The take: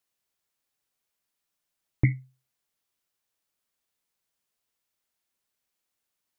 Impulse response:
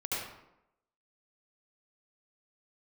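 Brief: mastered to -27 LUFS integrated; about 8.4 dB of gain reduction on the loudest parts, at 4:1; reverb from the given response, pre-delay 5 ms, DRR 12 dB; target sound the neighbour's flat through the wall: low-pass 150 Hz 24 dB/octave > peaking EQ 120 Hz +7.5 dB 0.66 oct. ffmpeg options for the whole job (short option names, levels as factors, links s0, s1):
-filter_complex "[0:a]acompressor=threshold=0.0501:ratio=4,asplit=2[s0][s1];[1:a]atrim=start_sample=2205,adelay=5[s2];[s1][s2]afir=irnorm=-1:irlink=0,volume=0.133[s3];[s0][s3]amix=inputs=2:normalize=0,lowpass=f=150:w=0.5412,lowpass=f=150:w=1.3066,equalizer=f=120:t=o:w=0.66:g=7.5,volume=1.78"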